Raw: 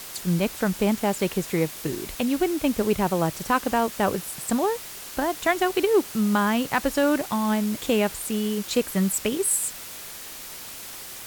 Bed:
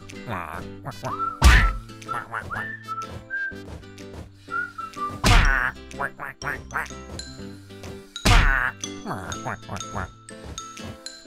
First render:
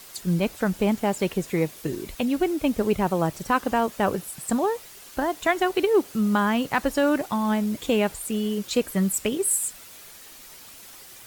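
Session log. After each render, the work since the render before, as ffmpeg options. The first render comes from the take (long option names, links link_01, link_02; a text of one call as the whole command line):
ffmpeg -i in.wav -af "afftdn=noise_reduction=8:noise_floor=-39" out.wav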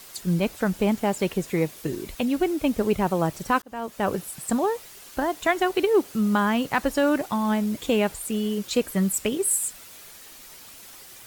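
ffmpeg -i in.wav -filter_complex "[0:a]asplit=2[link_01][link_02];[link_01]atrim=end=3.62,asetpts=PTS-STARTPTS,afade=type=out:start_time=3.616:duration=0.004:curve=hsin[link_03];[link_02]atrim=start=3.62,asetpts=PTS-STARTPTS,afade=type=in:duration=0.53[link_04];[link_03][link_04]concat=n=2:v=0:a=1" out.wav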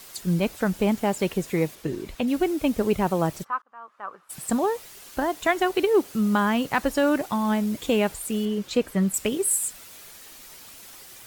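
ffmpeg -i in.wav -filter_complex "[0:a]asettb=1/sr,asplit=3[link_01][link_02][link_03];[link_01]atrim=end=1.754[link_04];[link_02]atrim=start=1.75:end=2.28,asetpts=PTS-STARTPTS,afade=type=in:duration=0.004:curve=qsin,afade=type=out:start_time=0.526:duration=0.004:curve=qsin,highshelf=frequency=6000:gain=-10[link_05];[link_03]atrim=start=2.276[link_06];[link_04][link_05]acrossfade=duration=0.004:curve1=hsin:curve2=qsin[link_07];[link_07][link_06]acrossfade=duration=0.004:curve1=qsin:curve2=hsin,asplit=3[link_08][link_09][link_10];[link_08]afade=type=out:start_time=3.43:duration=0.02[link_11];[link_09]bandpass=frequency=1200:width_type=q:width=5,afade=type=in:start_time=3.43:duration=0.02,afade=type=out:start_time=4.29:duration=0.02[link_12];[link_10]afade=type=in:start_time=4.29:duration=0.02[link_13];[link_11][link_12][link_13]amix=inputs=3:normalize=0,asettb=1/sr,asplit=3[link_14][link_15][link_16];[link_14]atrim=end=8.454[link_17];[link_15]atrim=start=8.45:end=9.14,asetpts=PTS-STARTPTS,afade=type=in:duration=0.004:curve=qsin,afade=type=out:start_time=0.686:duration=0.004:curve=qsin,aemphasis=mode=reproduction:type=cd[link_18];[link_16]atrim=start=9.136[link_19];[link_17][link_18]acrossfade=duration=0.004:curve1=hsin:curve2=qsin[link_20];[link_20][link_19]acrossfade=duration=0.004:curve1=qsin:curve2=hsin" out.wav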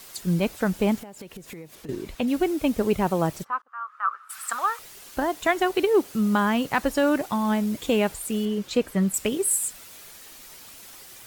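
ffmpeg -i in.wav -filter_complex "[0:a]asettb=1/sr,asplit=3[link_01][link_02][link_03];[link_01]atrim=end=0.984[link_04];[link_02]atrim=start=0.98:end=1.89,asetpts=PTS-STARTPTS,afade=type=in:duration=0.004:curve=qsin,afade=type=out:start_time=0.906:duration=0.004:curve=qsin,acompressor=threshold=-36dB:ratio=20:attack=3.2:release=140:knee=1:detection=peak[link_05];[link_03]atrim=start=1.886[link_06];[link_04][link_05]acrossfade=duration=0.004:curve1=hsin:curve2=qsin[link_07];[link_07][link_06]acrossfade=duration=0.004:curve1=qsin:curve2=hsin,asettb=1/sr,asplit=3[link_08][link_09][link_10];[link_08]atrim=end=3.684[link_11];[link_09]atrim=start=3.68:end=4.79,asetpts=PTS-STARTPTS,afade=type=in:duration=0.004:curve=qsin,afade=type=out:start_time=1.106:duration=0.004:curve=qsin,highpass=frequency=1300:width_type=q:width=6.3[link_12];[link_10]atrim=start=4.786[link_13];[link_11][link_12]acrossfade=duration=0.004:curve1=hsin:curve2=qsin[link_14];[link_14][link_13]acrossfade=duration=0.004:curve1=qsin:curve2=hsin" out.wav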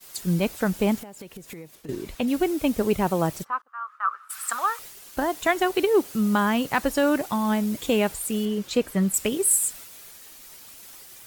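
ffmpeg -i in.wav -af "agate=range=-33dB:threshold=-41dB:ratio=3:detection=peak,highshelf=frequency=6500:gain=4.5" out.wav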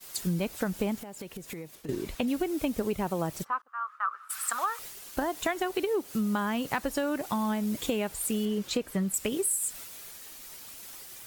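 ffmpeg -i in.wav -af "acompressor=threshold=-26dB:ratio=6" out.wav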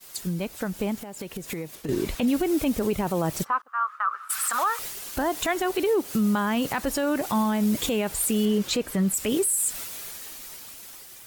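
ffmpeg -i in.wav -af "dynaudnorm=framelen=220:gausssize=11:maxgain=8.5dB,alimiter=limit=-16dB:level=0:latency=1:release=17" out.wav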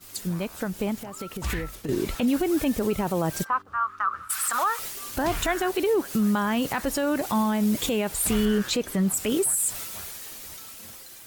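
ffmpeg -i in.wav -i bed.wav -filter_complex "[1:a]volume=-17dB[link_01];[0:a][link_01]amix=inputs=2:normalize=0" out.wav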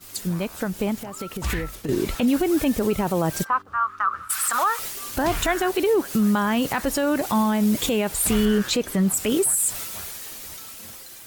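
ffmpeg -i in.wav -af "volume=3dB" out.wav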